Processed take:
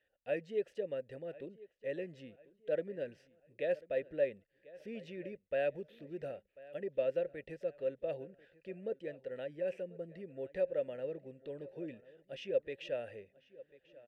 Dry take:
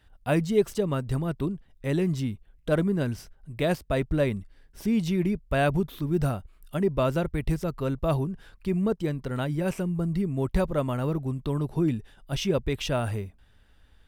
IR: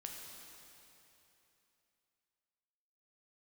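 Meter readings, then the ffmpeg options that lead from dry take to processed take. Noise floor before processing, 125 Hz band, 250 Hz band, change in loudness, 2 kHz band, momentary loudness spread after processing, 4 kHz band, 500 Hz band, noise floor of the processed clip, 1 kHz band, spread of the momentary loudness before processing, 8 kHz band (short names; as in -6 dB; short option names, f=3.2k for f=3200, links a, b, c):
-59 dBFS, -27.5 dB, -21.5 dB, -12.0 dB, -12.5 dB, 16 LU, under -15 dB, -7.5 dB, -79 dBFS, -19.0 dB, 9 LU, under -25 dB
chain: -filter_complex "[0:a]asplit=3[a][b][c];[a]bandpass=f=530:t=q:w=8,volume=0dB[d];[b]bandpass=f=1.84k:t=q:w=8,volume=-6dB[e];[c]bandpass=f=2.48k:t=q:w=8,volume=-9dB[f];[d][e][f]amix=inputs=3:normalize=0,asplit=2[g][h];[h]adelay=1042,lowpass=f=4k:p=1,volume=-20dB,asplit=2[i][j];[j]adelay=1042,lowpass=f=4k:p=1,volume=0.42,asplit=2[k][l];[l]adelay=1042,lowpass=f=4k:p=1,volume=0.42[m];[g][i][k][m]amix=inputs=4:normalize=0,volume=-1dB"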